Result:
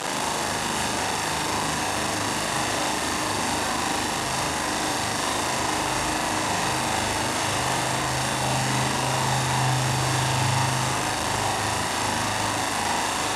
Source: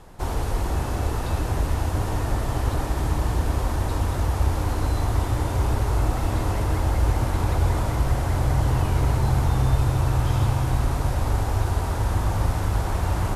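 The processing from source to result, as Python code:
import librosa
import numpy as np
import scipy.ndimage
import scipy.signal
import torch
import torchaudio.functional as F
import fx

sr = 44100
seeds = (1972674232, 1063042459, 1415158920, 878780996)

y = fx.delta_mod(x, sr, bps=64000, step_db=-19.0)
y = scipy.signal.sosfilt(scipy.signal.cheby1(2, 1.0, [200.0, 8800.0], 'bandpass', fs=sr, output='sos'), y)
y = fx.low_shelf(y, sr, hz=280.0, db=-7.5)
y = fx.doubler(y, sr, ms=38.0, db=-2.5)
y = fx.room_flutter(y, sr, wall_m=6.7, rt60_s=0.57)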